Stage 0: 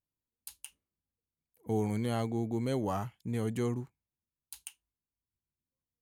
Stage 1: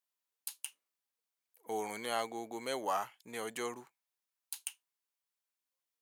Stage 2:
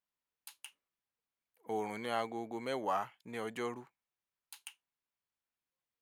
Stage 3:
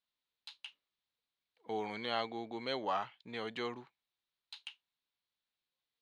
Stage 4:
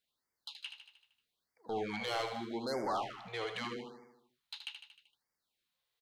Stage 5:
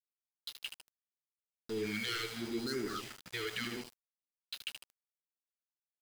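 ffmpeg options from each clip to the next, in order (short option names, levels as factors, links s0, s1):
-af "highpass=730,volume=1.68"
-af "bass=f=250:g=7,treble=f=4000:g=-11"
-af "lowpass=f=3900:t=q:w=3.9,volume=0.841"
-filter_complex "[0:a]asoftclip=type=tanh:threshold=0.0178,asplit=2[s0][s1];[s1]aecho=0:1:77|154|231|308|385|462|539:0.422|0.24|0.137|0.0781|0.0445|0.0254|0.0145[s2];[s0][s2]amix=inputs=2:normalize=0,afftfilt=real='re*(1-between(b*sr/1024,210*pow(3300/210,0.5+0.5*sin(2*PI*0.8*pts/sr))/1.41,210*pow(3300/210,0.5+0.5*sin(2*PI*0.8*pts/sr))*1.41))':imag='im*(1-between(b*sr/1024,210*pow(3300/210,0.5+0.5*sin(2*PI*0.8*pts/sr))/1.41,210*pow(3300/210,0.5+0.5*sin(2*PI*0.8*pts/sr))*1.41))':win_size=1024:overlap=0.75,volume=1.68"
-af "asuperstop=centerf=750:order=12:qfactor=0.89,aeval=exprs='val(0)+0.00126*sin(2*PI*4900*n/s)':c=same,aeval=exprs='val(0)*gte(abs(val(0)),0.00531)':c=same,volume=1.41"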